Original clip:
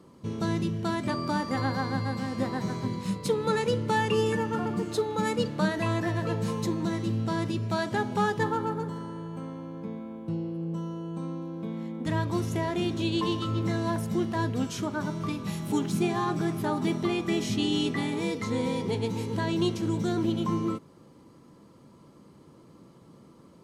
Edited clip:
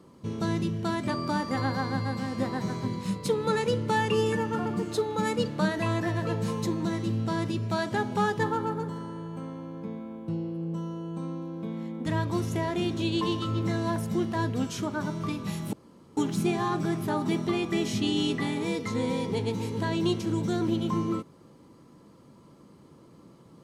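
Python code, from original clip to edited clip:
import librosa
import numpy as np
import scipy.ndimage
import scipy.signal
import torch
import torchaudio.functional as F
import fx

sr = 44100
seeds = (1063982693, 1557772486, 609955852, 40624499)

y = fx.edit(x, sr, fx.insert_room_tone(at_s=15.73, length_s=0.44), tone=tone)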